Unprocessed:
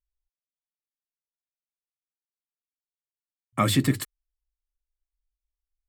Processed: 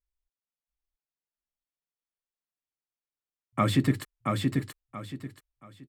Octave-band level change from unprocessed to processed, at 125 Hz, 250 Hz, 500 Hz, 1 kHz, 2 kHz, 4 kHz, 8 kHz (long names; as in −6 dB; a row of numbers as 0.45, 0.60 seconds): 0.0, 0.0, 0.0, −0.5, −2.0, −4.5, −9.0 decibels